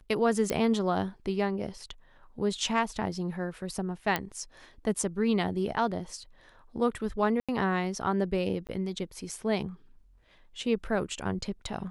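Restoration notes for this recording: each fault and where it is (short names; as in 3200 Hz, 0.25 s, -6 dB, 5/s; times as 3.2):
0.5 pop -14 dBFS
4.16 pop -12 dBFS
7.4–7.49 gap 86 ms
8.67–8.69 gap 18 ms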